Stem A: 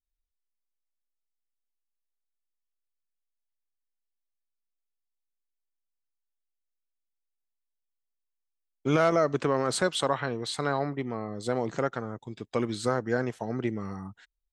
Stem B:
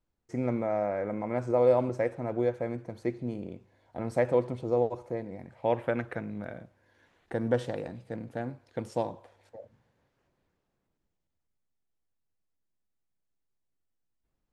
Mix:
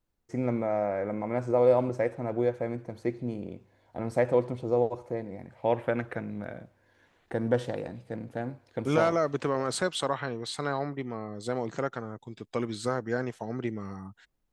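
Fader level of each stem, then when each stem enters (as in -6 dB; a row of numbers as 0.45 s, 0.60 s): -2.5 dB, +1.0 dB; 0.00 s, 0.00 s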